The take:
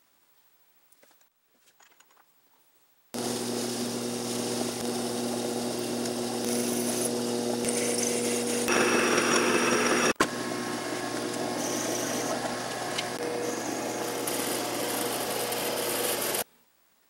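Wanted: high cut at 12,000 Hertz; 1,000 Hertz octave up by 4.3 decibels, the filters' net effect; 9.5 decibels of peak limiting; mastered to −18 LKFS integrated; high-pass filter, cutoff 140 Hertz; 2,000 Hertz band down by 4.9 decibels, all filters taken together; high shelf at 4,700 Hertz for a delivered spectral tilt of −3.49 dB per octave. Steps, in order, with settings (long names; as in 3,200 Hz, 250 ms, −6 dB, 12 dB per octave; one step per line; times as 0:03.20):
high-pass filter 140 Hz
low-pass filter 12,000 Hz
parametric band 1,000 Hz +8.5 dB
parametric band 2,000 Hz −8.5 dB
high-shelf EQ 4,700 Hz −8.5 dB
level +12 dB
brickwall limiter −5 dBFS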